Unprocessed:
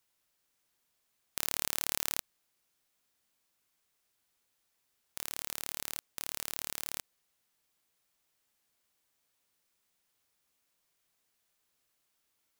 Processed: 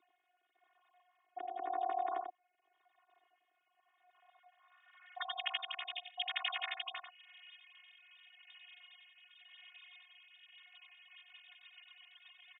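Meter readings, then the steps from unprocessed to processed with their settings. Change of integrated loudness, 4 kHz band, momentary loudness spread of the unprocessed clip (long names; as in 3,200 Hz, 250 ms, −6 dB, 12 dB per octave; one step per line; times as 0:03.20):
−4.0 dB, +2.0 dB, 10 LU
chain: three sine waves on the formant tracks
notch filter 1,500 Hz, Q 13
treble cut that deepens with the level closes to 1,800 Hz, closed at −35.5 dBFS
parametric band 340 Hz +5.5 dB 0.87 octaves
in parallel at −2 dB: downward compressor, threshold −52 dBFS, peak gain reduction 18 dB
on the sum: phases set to zero 361 Hz
band-pass filter sweep 320 Hz → 2,800 Hz, 0:03.97–0:05.36
rotating-speaker cabinet horn 0.9 Hz, later 8 Hz, at 0:10.70
slap from a distant wall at 16 metres, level −7 dB
level +17 dB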